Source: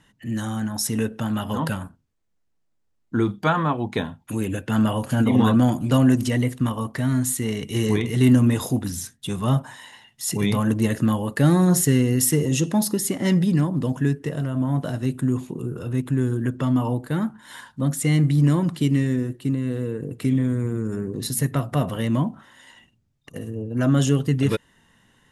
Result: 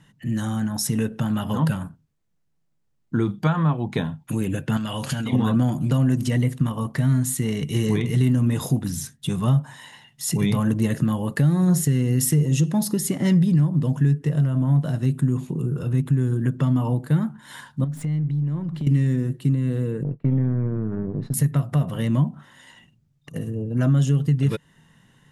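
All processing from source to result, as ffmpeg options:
-filter_complex "[0:a]asettb=1/sr,asplit=3[a][b][c];[a]atrim=end=4.774[d];[b]atrim=start=4.77:end=5.33,asetpts=PTS-STARTPTS,afade=t=in:d=0.004:c=qsin,afade=t=out:st=0.556:d=0.004:c=qsin,equalizer=f=4.2k:t=o:w=2.7:g=14.5,acompressor=threshold=-25dB:ratio=10:attack=3.2:release=140:knee=1:detection=peak[e];[c]atrim=start=5.326[f];[d][e]acrossfade=d=0.004:c1=hsin:c2=qsin[g];[g][f]acrossfade=d=0.004:c1=qsin:c2=hsin,asettb=1/sr,asplit=3[h][i][j];[h]atrim=end=17.844[k];[i]atrim=start=17.84:end=18.87,asetpts=PTS-STARTPTS,afade=t=in:d=0.004:c=qsin,afade=t=out:st=1.026:d=0.004:c=qsin,aeval=exprs='if(lt(val(0),0),0.708*val(0),val(0))':c=same,equalizer=f=11k:t=o:w=2.1:g=-14.5,acompressor=threshold=-30dB:ratio=8:attack=3.2:release=140:knee=1:detection=peak[l];[j]atrim=start=18.866[m];[k][l]acrossfade=d=0.004:c1=hsin:c2=qsin[n];[n][m]acrossfade=d=0.004:c1=qsin:c2=hsin,asettb=1/sr,asplit=3[o][p][q];[o]atrim=end=20.034[r];[p]atrim=start=20.03:end=21.34,asetpts=PTS-STARTPTS,afade=t=in:d=0.004:c=qsin,afade=t=out:st=1.306:d=0.004:c=qsin,aeval=exprs='if(lt(val(0),0),0.447*val(0),val(0))':c=same,lowpass=1.5k,agate=range=-33dB:threshold=-35dB:ratio=3:release=100:detection=peak[s];[q]atrim=start=21.336[t];[r][s]acrossfade=d=0.004:c1=hsin:c2=qsin[u];[u][t]acrossfade=d=0.004:c1=qsin:c2=hsin,equalizer=f=150:w=2.7:g=12.5,alimiter=limit=-7dB:level=0:latency=1:release=326,acompressor=threshold=-22dB:ratio=1.5"

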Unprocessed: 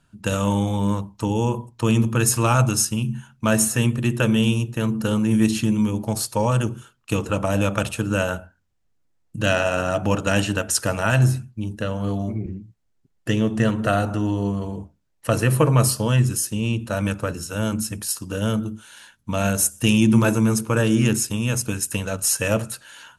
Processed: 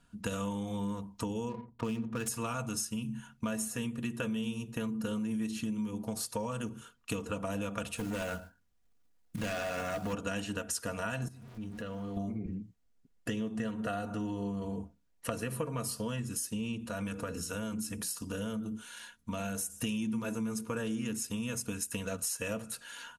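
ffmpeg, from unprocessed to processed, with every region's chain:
-filter_complex "[0:a]asettb=1/sr,asplit=3[a][b][c];[a]atrim=end=1.494[d];[b]atrim=start=1.49:end=2.28,asetpts=PTS-STARTPTS,afade=t=in:d=0.004:c=qsin,afade=t=out:st=0.786:d=0.004:c=qsin,equalizer=f=4.6k:w=3.5:g=-12,adynamicsmooth=sensitivity=7:basefreq=590[e];[c]atrim=start=2.276[f];[d][e]acrossfade=d=0.004:c1=hsin:c2=qsin[g];[g][f]acrossfade=d=0.004:c1=qsin:c2=hsin,asettb=1/sr,asplit=3[h][i][j];[h]atrim=end=7.974[k];[i]atrim=start=7.97:end=10.13,asetpts=PTS-STARTPTS,afade=t=in:d=0.004:c=qsin,afade=t=out:st=2.156:d=0.004:c=qsin,asoftclip=type=hard:threshold=-19.5dB,acrusher=bits=4:mode=log:mix=0:aa=0.000001[l];[j]atrim=start=10.126[m];[k][l]acrossfade=d=0.004:c1=hsin:c2=qsin[n];[n][m]acrossfade=d=0.004:c1=qsin:c2=hsin,asettb=1/sr,asplit=3[o][p][q];[o]atrim=end=11.284[r];[p]atrim=start=11.28:end=12.17,asetpts=PTS-STARTPTS,afade=t=in:d=0.004:c=qsin,afade=t=out:st=0.886:d=0.004:c=qsin,aeval=exprs='val(0)+0.5*0.0119*sgn(val(0))':c=same,highshelf=f=6k:g=-6,acompressor=threshold=-38dB:ratio=2.5:attack=3.2:release=140:knee=1:detection=peak[s];[q]atrim=start=12.166[t];[r][s]acrossfade=d=0.004:c1=hsin:c2=qsin[u];[u][t]acrossfade=d=0.004:c1=qsin:c2=hsin,asettb=1/sr,asplit=3[v][w][x];[v]atrim=end=16.894[y];[w]atrim=start=16.89:end=19.7,asetpts=PTS-STARTPTS,afade=t=in:d=0.004:c=qsin,afade=t=out:st=2.806:d=0.004:c=qsin,bandreject=f=60:t=h:w=6,bandreject=f=120:t=h:w=6,bandreject=f=180:t=h:w=6,bandreject=f=240:t=h:w=6,bandreject=f=300:t=h:w=6,bandreject=f=360:t=h:w=6,bandreject=f=420:t=h:w=6,bandreject=f=480:t=h:w=6,acompressor=threshold=-30dB:ratio=2:attack=3.2:release=140:knee=1:detection=peak[z];[x]atrim=start=19.696[aa];[y][z]acrossfade=d=0.004:c1=hsin:c2=qsin[ab];[ab][aa]acrossfade=d=0.004:c1=qsin:c2=hsin,bandreject=f=850:w=15,aecho=1:1:4.2:0.51,acompressor=threshold=-29dB:ratio=6,volume=-4dB"

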